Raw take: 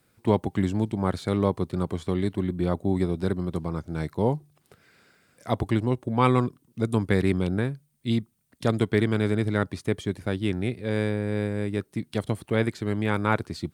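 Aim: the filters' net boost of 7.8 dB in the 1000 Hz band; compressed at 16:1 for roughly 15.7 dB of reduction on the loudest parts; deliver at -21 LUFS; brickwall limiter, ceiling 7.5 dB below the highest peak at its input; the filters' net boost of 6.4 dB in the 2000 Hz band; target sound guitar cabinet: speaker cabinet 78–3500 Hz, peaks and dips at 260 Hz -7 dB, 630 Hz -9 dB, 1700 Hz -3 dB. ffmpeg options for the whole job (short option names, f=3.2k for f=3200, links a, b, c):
-af "equalizer=f=1k:t=o:g=9,equalizer=f=2k:t=o:g=7,acompressor=threshold=-25dB:ratio=16,alimiter=limit=-19dB:level=0:latency=1,highpass=78,equalizer=f=260:t=q:w=4:g=-7,equalizer=f=630:t=q:w=4:g=-9,equalizer=f=1.7k:t=q:w=4:g=-3,lowpass=f=3.5k:w=0.5412,lowpass=f=3.5k:w=1.3066,volume=14.5dB"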